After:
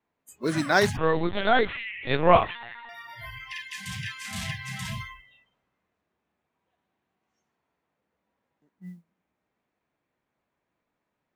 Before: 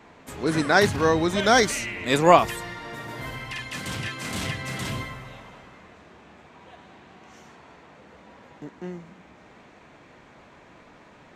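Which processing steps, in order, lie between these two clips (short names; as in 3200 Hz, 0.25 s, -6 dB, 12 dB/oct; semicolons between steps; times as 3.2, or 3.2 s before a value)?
spectral noise reduction 28 dB; modulation noise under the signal 33 dB; 0.97–2.89 LPC vocoder at 8 kHz pitch kept; gain -2.5 dB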